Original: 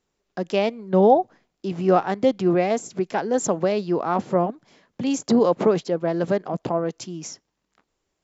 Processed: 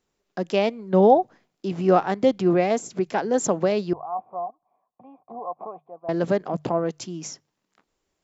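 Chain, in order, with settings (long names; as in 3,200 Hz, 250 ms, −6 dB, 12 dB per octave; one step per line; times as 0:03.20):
0:03.93–0:06.09: formant resonators in series a
mains-hum notches 50/100/150 Hz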